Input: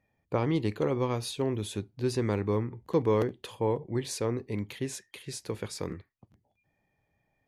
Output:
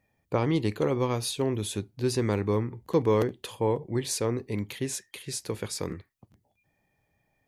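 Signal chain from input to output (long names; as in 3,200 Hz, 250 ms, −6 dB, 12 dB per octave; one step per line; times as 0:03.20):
high-shelf EQ 5,400 Hz +6.5 dB
level +2 dB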